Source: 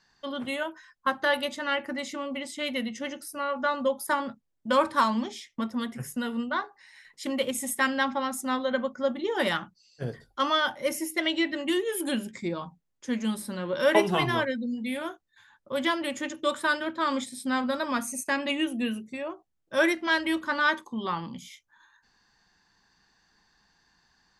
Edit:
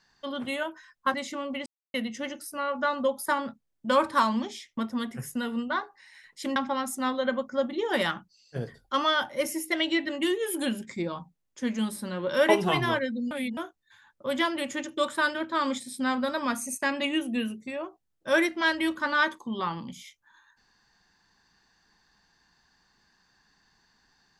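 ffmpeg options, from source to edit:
ffmpeg -i in.wav -filter_complex "[0:a]asplit=7[link_01][link_02][link_03][link_04][link_05][link_06][link_07];[link_01]atrim=end=1.142[link_08];[link_02]atrim=start=1.948:end=2.47,asetpts=PTS-STARTPTS,afade=type=out:start_time=0.518:duration=0.004:curve=hsin[link_09];[link_03]atrim=start=2.47:end=2.75,asetpts=PTS-STARTPTS,volume=0[link_10];[link_04]atrim=start=2.75:end=7.372,asetpts=PTS-STARTPTS,afade=type=in:duration=0.004:curve=hsin[link_11];[link_05]atrim=start=8.018:end=14.772[link_12];[link_06]atrim=start=14.768:end=15.032,asetpts=PTS-STARTPTS,areverse[link_13];[link_07]atrim=start=15.028[link_14];[link_09][link_10][link_11]concat=n=3:v=0:a=1[link_15];[link_08][link_15]acrossfade=duration=0.004:curve1=hsin:curve2=hsin[link_16];[link_16][link_12]acrossfade=duration=0.004:curve1=hsin:curve2=hsin[link_17];[link_17][link_13]acrossfade=duration=0.004:curve1=hsin:curve2=hsin[link_18];[link_18][link_14]acrossfade=duration=0.004:curve1=hsin:curve2=hsin" out.wav

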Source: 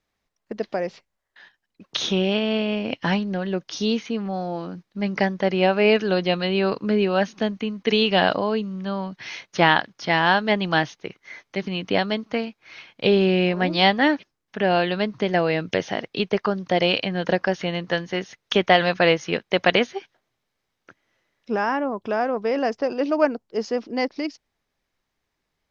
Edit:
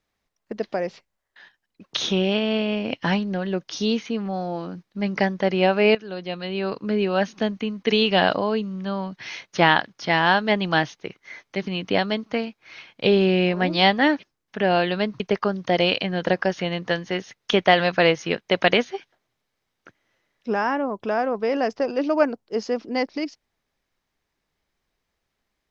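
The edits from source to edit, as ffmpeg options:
ffmpeg -i in.wav -filter_complex "[0:a]asplit=3[link_01][link_02][link_03];[link_01]atrim=end=5.95,asetpts=PTS-STARTPTS,afade=type=out:start_time=5.946:duration=0.004:curve=hsin:silence=0.158489[link_04];[link_02]atrim=start=5.95:end=15.202,asetpts=PTS-STARTPTS,afade=type=in:duration=1.38:silence=0.158489[link_05];[link_03]atrim=start=16.218[link_06];[link_04][link_05]concat=n=2:v=0:a=1[link_07];[link_07][link_06]acrossfade=duration=0.004:curve1=hsin:curve2=hsin" out.wav

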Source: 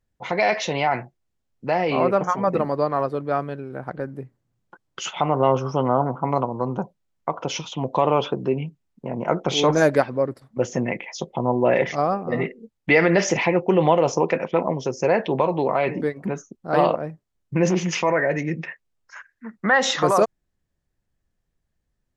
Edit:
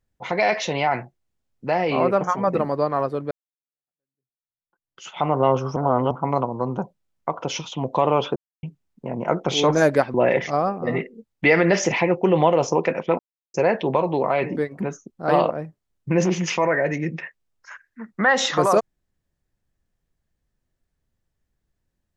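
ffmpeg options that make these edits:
ffmpeg -i in.wav -filter_complex "[0:a]asplit=9[link_01][link_02][link_03][link_04][link_05][link_06][link_07][link_08][link_09];[link_01]atrim=end=3.31,asetpts=PTS-STARTPTS,afade=type=out:start_time=3.306:duration=0.004:curve=hsin[link_10];[link_02]atrim=start=3.31:end=5.762,asetpts=PTS-STARTPTS,afade=type=in:duration=1.93:curve=exp[link_11];[link_03]atrim=start=5.758:end=6.112,asetpts=PTS-STARTPTS,areverse[link_12];[link_04]atrim=start=6.108:end=8.36,asetpts=PTS-STARTPTS,afade=type=out:start_time=2.248:duration=0.004:curve=hsin[link_13];[link_05]atrim=start=8.36:end=8.63,asetpts=PTS-STARTPTS,volume=0[link_14];[link_06]atrim=start=8.63:end=10.142,asetpts=PTS-STARTPTS,afade=type=in:duration=0.004:curve=hsin[link_15];[link_07]atrim=start=11.588:end=14.64,asetpts=PTS-STARTPTS,afade=type=out:start_time=3.048:duration=0.004:curve=hsin[link_16];[link_08]atrim=start=14.64:end=14.99,asetpts=PTS-STARTPTS,volume=0[link_17];[link_09]atrim=start=14.99,asetpts=PTS-STARTPTS,afade=type=in:duration=0.004:curve=hsin[link_18];[link_10][link_11]concat=n=2:v=0:a=1[link_19];[link_19][link_12]acrossfade=duration=0.004:curve1=hsin:curve2=hsin[link_20];[link_13][link_14][link_15]concat=n=3:v=0:a=1[link_21];[link_20][link_21]acrossfade=duration=0.004:curve1=hsin:curve2=hsin[link_22];[link_16][link_17][link_18]concat=n=3:v=0:a=1[link_23];[link_22][link_23]acrossfade=duration=0.004:curve1=hsin:curve2=hsin" out.wav

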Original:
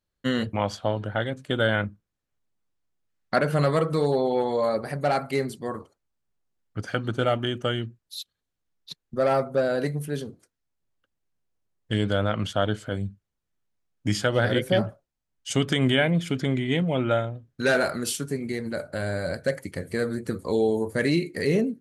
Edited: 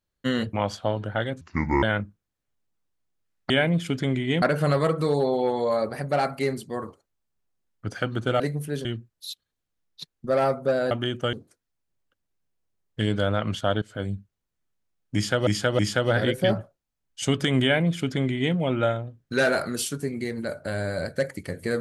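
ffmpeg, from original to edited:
ffmpeg -i in.wav -filter_complex "[0:a]asplit=12[link_01][link_02][link_03][link_04][link_05][link_06][link_07][link_08][link_09][link_10][link_11][link_12];[link_01]atrim=end=1.414[link_13];[link_02]atrim=start=1.41:end=1.67,asetpts=PTS-STARTPTS,asetrate=27342,aresample=44100[link_14];[link_03]atrim=start=1.666:end=3.342[link_15];[link_04]atrim=start=15.908:end=16.832[link_16];[link_05]atrim=start=3.338:end=7.322[link_17];[link_06]atrim=start=9.798:end=10.252[link_18];[link_07]atrim=start=7.738:end=9.802[link_19];[link_08]atrim=start=7.318:end=7.742[link_20];[link_09]atrim=start=10.248:end=12.74,asetpts=PTS-STARTPTS,afade=type=out:start_time=2.488:duration=0.004:curve=hsin:silence=0.0944061[link_21];[link_10]atrim=start=12.74:end=14.392,asetpts=PTS-STARTPTS,afade=type=in:duration=0.27:curve=qsin:silence=0.0944061[link_22];[link_11]atrim=start=14.068:end=14.392[link_23];[link_12]atrim=start=14.068[link_24];[link_13][link_14]acrossfade=duration=0.004:curve1=hsin:curve2=hsin[link_25];[link_25][link_15]acrossfade=duration=0.004:curve1=hsin:curve2=hsin[link_26];[link_26][link_16]acrossfade=duration=0.004:curve1=hsin:curve2=hsin[link_27];[link_27][link_17]acrossfade=duration=0.004:curve1=hsin:curve2=hsin[link_28];[link_28][link_18]acrossfade=duration=0.004:curve1=hsin:curve2=hsin[link_29];[link_29][link_19]acrossfade=duration=0.004:curve1=hsin:curve2=hsin[link_30];[link_30][link_20]acrossfade=duration=0.004:curve1=hsin:curve2=hsin[link_31];[link_21][link_22]concat=n=2:v=0:a=1[link_32];[link_31][link_32]acrossfade=duration=0.004:curve1=hsin:curve2=hsin[link_33];[link_33][link_23]acrossfade=duration=0.004:curve1=hsin:curve2=hsin[link_34];[link_34][link_24]acrossfade=duration=0.004:curve1=hsin:curve2=hsin" out.wav

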